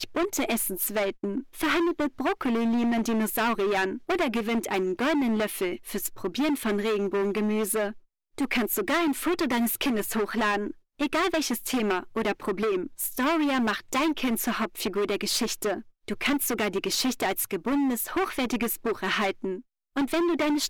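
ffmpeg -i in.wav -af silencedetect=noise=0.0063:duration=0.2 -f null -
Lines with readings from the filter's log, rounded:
silence_start: 7.98
silence_end: 8.38 | silence_duration: 0.40
silence_start: 10.73
silence_end: 10.99 | silence_duration: 0.26
silence_start: 15.82
silence_end: 16.08 | silence_duration: 0.27
silence_start: 19.61
silence_end: 19.96 | silence_duration: 0.35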